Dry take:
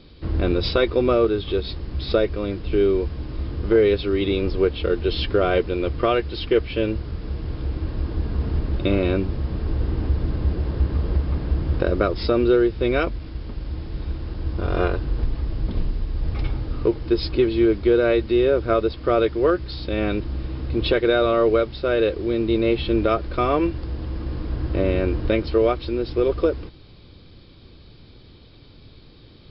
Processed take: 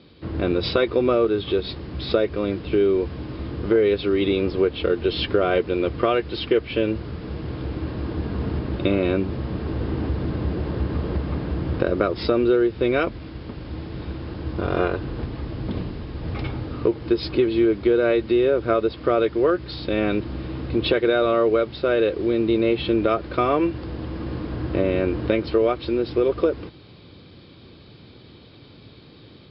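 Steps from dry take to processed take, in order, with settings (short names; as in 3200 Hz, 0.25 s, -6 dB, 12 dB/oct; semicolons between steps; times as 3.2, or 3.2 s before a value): AGC gain up to 4 dB; BPF 110–4300 Hz; compressor 2:1, threshold -18 dBFS, peak gain reduction 5.5 dB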